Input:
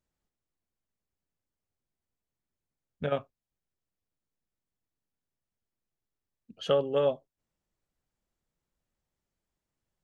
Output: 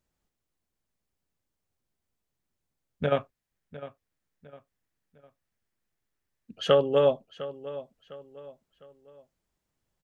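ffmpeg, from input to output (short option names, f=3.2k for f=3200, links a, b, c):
-filter_complex "[0:a]asettb=1/sr,asplit=3[a][b][c];[a]atrim=end=3.154[d];[b]atrim=start=3.15:end=6.75,asetpts=PTS-STARTPTS,afade=t=in:d=0.004:c=qsin,afade=t=out:st=3.596:d=0.004:c=qsin,equalizer=f=1.8k:w=1.8:g=6[e];[c]atrim=start=6.746[f];[d][e]acrossfade=d=0.004:c1=hsin:c2=qsin[g];[g][f]acrossfade=d=0.004:c1=qsin:c2=hsin,asplit=2[h][i];[i]adelay=705,lowpass=f=4.6k:p=1,volume=-15.5dB,asplit=2[j][k];[k]adelay=705,lowpass=f=4.6k:p=1,volume=0.38,asplit=2[l][m];[m]adelay=705,lowpass=f=4.6k:p=1,volume=0.38[n];[h][j][l][n]amix=inputs=4:normalize=0,volume=4.5dB"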